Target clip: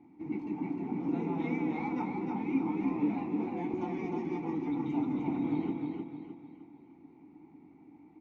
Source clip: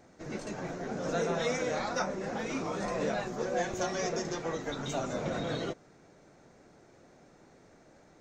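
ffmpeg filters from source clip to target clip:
-filter_complex "[0:a]asplit=3[a][b][c];[a]bandpass=f=300:t=q:w=8,volume=0dB[d];[b]bandpass=f=870:t=q:w=8,volume=-6dB[e];[c]bandpass=f=2.24k:t=q:w=8,volume=-9dB[f];[d][e][f]amix=inputs=3:normalize=0,bass=f=250:g=11,treble=f=4k:g=-13,aecho=1:1:307|614|921|1228|1535:0.631|0.259|0.106|0.0435|0.0178,volume=8dB"

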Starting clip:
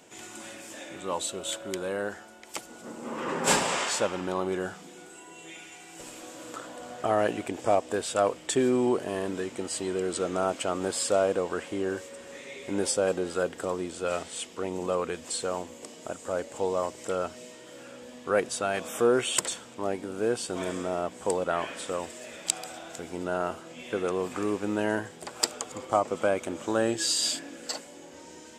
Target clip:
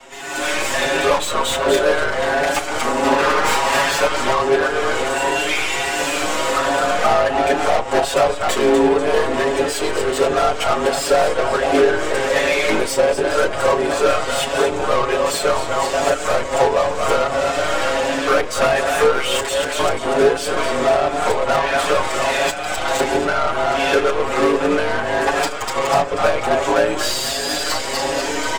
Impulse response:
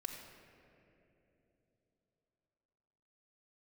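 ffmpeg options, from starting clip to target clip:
-filter_complex "[0:a]asplit=6[a][b][c][d][e][f];[b]adelay=244,afreqshift=49,volume=-10.5dB[g];[c]adelay=488,afreqshift=98,volume=-17.6dB[h];[d]adelay=732,afreqshift=147,volume=-24.8dB[i];[e]adelay=976,afreqshift=196,volume=-31.9dB[j];[f]adelay=1220,afreqshift=245,volume=-39dB[k];[a][g][h][i][j][k]amix=inputs=6:normalize=0,acompressor=threshold=-40dB:ratio=12,aeval=exprs='val(0)*sin(2*PI*26*n/s)':c=same,aecho=1:1:7.3:0.93,agate=range=-8dB:threshold=-42dB:ratio=16:detection=peak,highpass=130,lowshelf=f=220:g=-9.5,asplit=2[l][m];[m]highpass=f=720:p=1,volume=32dB,asoftclip=type=tanh:threshold=-22dB[n];[l][n]amix=inputs=2:normalize=0,lowpass=f=1.6k:p=1,volume=-6dB,asplit=2[o][p];[1:a]atrim=start_sample=2205,adelay=29[q];[p][q]afir=irnorm=-1:irlink=0,volume=-10.5dB[r];[o][r]amix=inputs=2:normalize=0,aeval=exprs='0.0668*(cos(1*acos(clip(val(0)/0.0668,-1,1)))-cos(1*PI/2))+0.00596*(cos(8*acos(clip(val(0)/0.0668,-1,1)))-cos(8*PI/2))':c=same,dynaudnorm=f=230:g=3:m=15dB,asplit=2[s][t];[t]adelay=5.9,afreqshift=1.4[u];[s][u]amix=inputs=2:normalize=1,volume=5dB"

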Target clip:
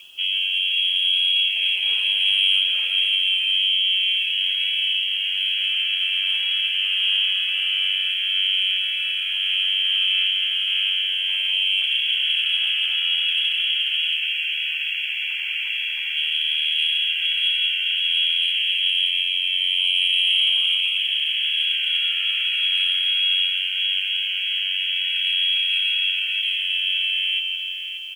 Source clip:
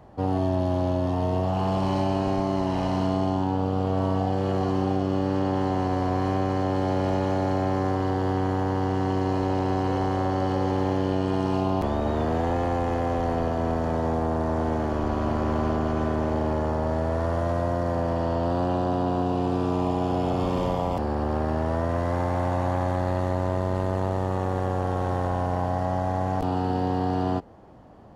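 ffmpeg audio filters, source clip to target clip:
-filter_complex "[0:a]asplit=3[a][b][c];[a]afade=t=out:st=14.15:d=0.02[d];[b]lowshelf=f=490:t=q:w=1.5:g=-7.5,afade=t=in:st=14.15:d=0.02,afade=t=out:st=16.15:d=0.02[e];[c]afade=t=in:st=16.15:d=0.02[f];[d][e][f]amix=inputs=3:normalize=0,asplit=2[g][h];[h]adelay=166,lowpass=f=820:p=1,volume=-5dB,asplit=2[i][j];[j]adelay=166,lowpass=f=820:p=1,volume=0.44,asplit=2[k][l];[l]adelay=166,lowpass=f=820:p=1,volume=0.44,asplit=2[m][n];[n]adelay=166,lowpass=f=820:p=1,volume=0.44,asplit=2[o][p];[p]adelay=166,lowpass=f=820:p=1,volume=0.44[q];[g][i][k][m][o][q]amix=inputs=6:normalize=0,acompressor=mode=upward:threshold=-41dB:ratio=2.5,aemphasis=mode=reproduction:type=75fm,lowpass=f=2.9k:t=q:w=0.5098,lowpass=f=2.9k:t=q:w=0.6013,lowpass=f=2.9k:t=q:w=0.9,lowpass=f=2.9k:t=q:w=2.563,afreqshift=-3400,afftfilt=real='re*gte(hypot(re,im),0.00891)':imag='im*gte(hypot(re,im),0.00891)':win_size=1024:overlap=0.75,acontrast=75,aecho=1:1:582|1164|1746|2328|2910:0.355|0.153|0.0656|0.0282|0.0121,acrusher=bits=7:mix=0:aa=0.000001,volume=-6dB"

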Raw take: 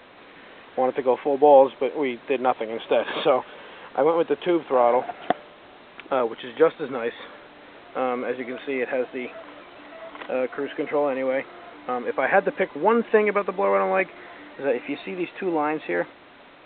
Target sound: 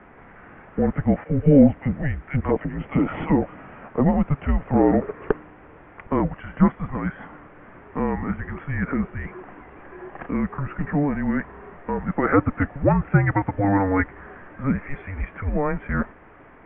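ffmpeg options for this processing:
-filter_complex "[0:a]asettb=1/sr,asplit=3[a][b][c];[a]atrim=end=1.244[d];[b]atrim=start=1.24:end=3.46,asetpts=PTS-STARTPTS,afade=t=in:d=0.004:c=qsin,afade=t=out:st=2.216:d=0.004:c=qsin,acrossover=split=1100[e][f];[e]adelay=40[g];[g][f]amix=inputs=2:normalize=0,atrim=end_sample=97902[h];[c]atrim=start=3.456[i];[d][h]acrossfade=d=0.004:c1=hsin:c2=qsin[j];[j][i]acrossfade=d=0.004:c1=qsin:c2=hsin,highpass=f=260:t=q:w=0.5412,highpass=f=260:t=q:w=1.307,lowpass=f=2.4k:t=q:w=0.5176,lowpass=f=2.4k:t=q:w=0.7071,lowpass=f=2.4k:t=q:w=1.932,afreqshift=-290,volume=1.5dB"

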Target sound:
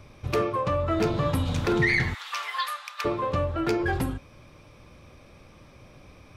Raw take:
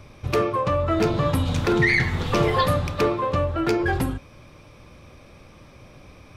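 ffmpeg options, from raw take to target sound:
-filter_complex "[0:a]asplit=3[a][b][c];[a]afade=t=out:st=2.13:d=0.02[d];[b]highpass=f=1.1k:w=0.5412,highpass=f=1.1k:w=1.3066,afade=t=in:st=2.13:d=0.02,afade=t=out:st=3.04:d=0.02[e];[c]afade=t=in:st=3.04:d=0.02[f];[d][e][f]amix=inputs=3:normalize=0,volume=-3.5dB"

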